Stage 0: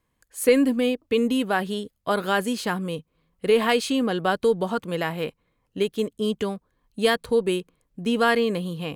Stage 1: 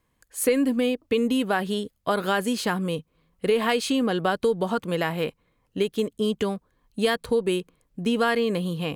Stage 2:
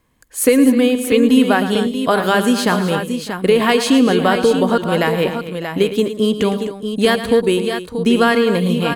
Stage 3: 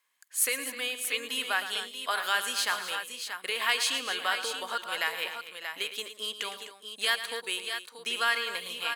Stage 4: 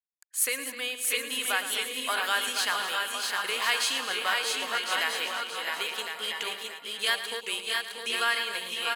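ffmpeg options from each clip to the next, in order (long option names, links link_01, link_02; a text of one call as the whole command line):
ffmpeg -i in.wav -af "acompressor=threshold=-23dB:ratio=2.5,volume=2.5dB" out.wav
ffmpeg -i in.wav -filter_complex "[0:a]equalizer=frequency=260:width=4.1:gain=3.5,asplit=2[link_01][link_02];[link_02]aecho=0:1:111|196|254|604|633:0.251|0.106|0.224|0.106|0.398[link_03];[link_01][link_03]amix=inputs=2:normalize=0,volume=8dB" out.wav
ffmpeg -i in.wav -af "highpass=1500,volume=-5.5dB" out.wav
ffmpeg -i in.wav -filter_complex "[0:a]anlmdn=0.00631,asplit=2[link_01][link_02];[link_02]aecho=0:1:660|1056|1294|1436|1522:0.631|0.398|0.251|0.158|0.1[link_03];[link_01][link_03]amix=inputs=2:normalize=0" out.wav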